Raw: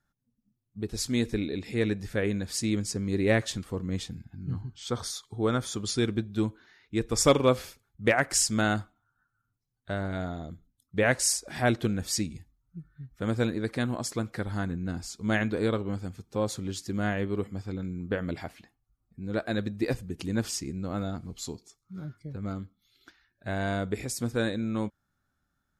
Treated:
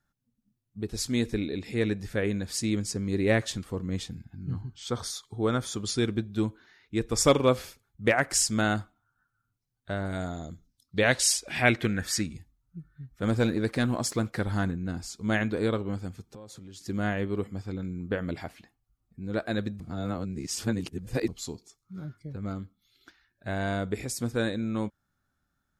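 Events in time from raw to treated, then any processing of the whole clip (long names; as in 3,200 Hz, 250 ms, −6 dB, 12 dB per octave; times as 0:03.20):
0:10.05–0:12.34: parametric band 9,600 Hz → 1,300 Hz +14 dB 0.73 octaves
0:13.23–0:14.71: leveller curve on the samples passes 1
0:16.22–0:16.81: downward compressor 10 to 1, threshold −42 dBFS
0:19.80–0:21.28: reverse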